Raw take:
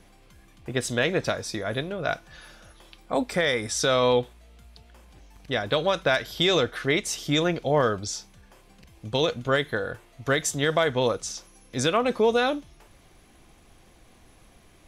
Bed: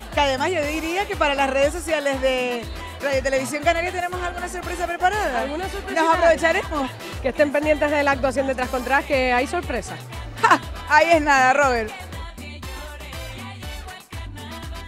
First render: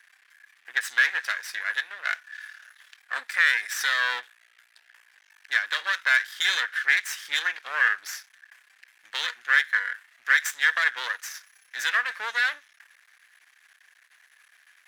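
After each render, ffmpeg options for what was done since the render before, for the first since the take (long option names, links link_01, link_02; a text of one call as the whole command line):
ffmpeg -i in.wav -af "aeval=exprs='max(val(0),0)':channel_layout=same,highpass=frequency=1700:width_type=q:width=6.3" out.wav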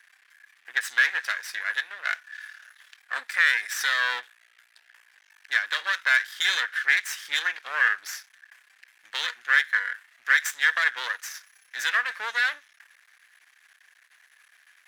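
ffmpeg -i in.wav -af anull out.wav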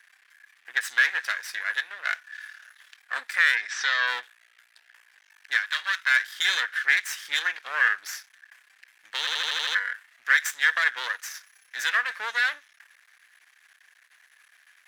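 ffmpeg -i in.wav -filter_complex "[0:a]asplit=3[link_01][link_02][link_03];[link_01]afade=type=out:start_time=3.55:duration=0.02[link_04];[link_02]lowpass=frequency=6200:width=0.5412,lowpass=frequency=6200:width=1.3066,afade=type=in:start_time=3.55:duration=0.02,afade=type=out:start_time=4.06:duration=0.02[link_05];[link_03]afade=type=in:start_time=4.06:duration=0.02[link_06];[link_04][link_05][link_06]amix=inputs=3:normalize=0,asettb=1/sr,asplit=3[link_07][link_08][link_09];[link_07]atrim=end=5.564[link_10];[link_08]atrim=start=5.56:end=6.16,asetpts=PTS-STARTPTS,afade=type=in:duration=0.004:curve=qsin,afade=type=out:start_time=0.596:duration=0.004:curve=qsin,highpass=1000[link_11];[link_09]atrim=start=6.156[link_12];[link_10][link_11]acrossfade=duration=0.004:curve1=hsin:curve2=qsin[link_13];[link_13][link_12]acrossfade=duration=0.004:curve1=qsin:curve2=hsin,asplit=8[link_14][link_15][link_16][link_17][link_18][link_19][link_20][link_21];[link_14]atrim=end=9.272[link_22];[link_15]atrim=start=9.188:end=9.272[link_23];[link_16]atrim=start=9.188:end=9.272[link_24];[link_17]atrim=start=9.188:end=9.272[link_25];[link_18]atrim=start=9.188:end=9.272[link_26];[link_19]atrim=start=9.188:end=9.272[link_27];[link_20]atrim=start=9.188:end=9.272[link_28];[link_21]atrim=start=9.748[link_29];[link_22][link_23]acrossfade=duration=0.004:curve1=hsin:curve2=hsin[link_30];[link_30][link_24]acrossfade=duration=0.004:curve1=hsin:curve2=hsin[link_31];[link_31][link_25]acrossfade=duration=0.004:curve1=hsin:curve2=hsin[link_32];[link_32][link_26]acrossfade=duration=0.004:curve1=hsin:curve2=hsin[link_33];[link_33][link_27]acrossfade=duration=0.004:curve1=hsin:curve2=hsin[link_34];[link_34][link_28]acrossfade=duration=0.004:curve1=hsin:curve2=hsin[link_35];[link_35][link_29]acrossfade=duration=0.004:curve1=hsin:curve2=hsin" out.wav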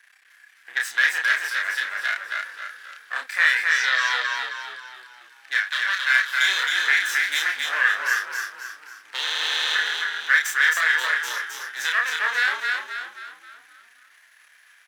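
ffmpeg -i in.wav -filter_complex "[0:a]asplit=2[link_01][link_02];[link_02]adelay=31,volume=-2.5dB[link_03];[link_01][link_03]amix=inputs=2:normalize=0,asplit=7[link_04][link_05][link_06][link_07][link_08][link_09][link_10];[link_05]adelay=266,afreqshift=-36,volume=-3dB[link_11];[link_06]adelay=532,afreqshift=-72,volume=-10.1dB[link_12];[link_07]adelay=798,afreqshift=-108,volume=-17.3dB[link_13];[link_08]adelay=1064,afreqshift=-144,volume=-24.4dB[link_14];[link_09]adelay=1330,afreqshift=-180,volume=-31.5dB[link_15];[link_10]adelay=1596,afreqshift=-216,volume=-38.7dB[link_16];[link_04][link_11][link_12][link_13][link_14][link_15][link_16]amix=inputs=7:normalize=0" out.wav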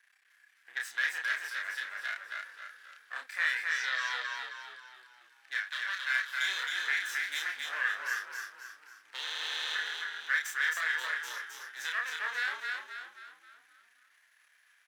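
ffmpeg -i in.wav -af "volume=-11.5dB" out.wav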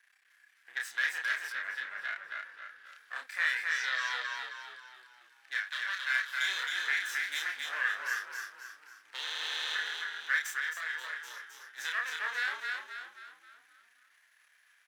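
ffmpeg -i in.wav -filter_complex "[0:a]asettb=1/sr,asplit=3[link_01][link_02][link_03];[link_01]atrim=end=1.524[link_04];[link_02]atrim=start=1.52:end=2.86,asetpts=PTS-STARTPTS,afade=type=in:duration=0.004:curve=qsin,afade=type=out:start_time=1.336:duration=0.004:curve=qsin,bass=frequency=250:gain=8,treble=frequency=4000:gain=-10[link_05];[link_03]atrim=start=2.856[link_06];[link_04][link_05]acrossfade=duration=0.004:curve1=hsin:curve2=qsin[link_07];[link_07][link_06]acrossfade=duration=0.004:curve1=qsin:curve2=hsin,asplit=3[link_08][link_09][link_10];[link_08]atrim=end=10.602[link_11];[link_09]atrim=start=10.598:end=11.782,asetpts=PTS-STARTPTS,volume=-5.5dB[link_12];[link_10]atrim=start=11.778[link_13];[link_11][link_12]acrossfade=duration=0.004:curve1=hsin:curve2=hsin[link_14];[link_14][link_13]acrossfade=duration=0.004:curve1=hsin:curve2=hsin" out.wav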